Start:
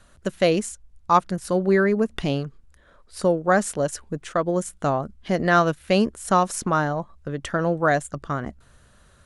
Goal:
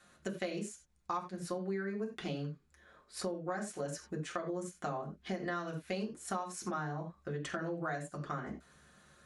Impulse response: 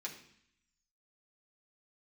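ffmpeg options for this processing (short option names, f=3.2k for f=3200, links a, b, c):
-filter_complex "[1:a]atrim=start_sample=2205,afade=t=out:st=0.15:d=0.01,atrim=end_sample=7056[a];[0:a][a]afir=irnorm=-1:irlink=0,acompressor=threshold=-33dB:ratio=6,volume=-2.5dB"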